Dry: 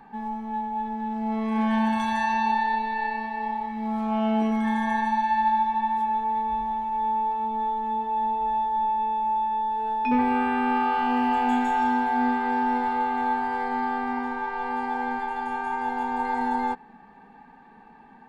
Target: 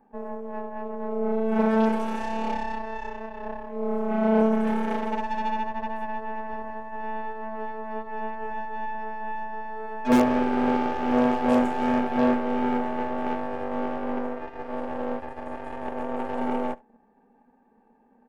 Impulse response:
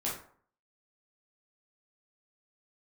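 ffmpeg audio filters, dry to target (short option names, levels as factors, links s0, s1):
-af "equalizer=f=240:w=3.7:g=7.5,aeval=exprs='0.316*(cos(1*acos(clip(val(0)/0.316,-1,1)))-cos(1*PI/2))+0.141*(cos(4*acos(clip(val(0)/0.316,-1,1)))-cos(4*PI/2))+0.126*(cos(6*acos(clip(val(0)/0.316,-1,1)))-cos(6*PI/2))+0.0282*(cos(7*acos(clip(val(0)/0.316,-1,1)))-cos(7*PI/2))':c=same,equalizer=f=125:t=o:w=1:g=-6,equalizer=f=500:t=o:w=1:g=9,equalizer=f=1000:t=o:w=1:g=-4,equalizer=f=2000:t=o:w=1:g=-5,equalizer=f=4000:t=o:w=1:g=-11,aecho=1:1:70:0.0668,volume=0.631"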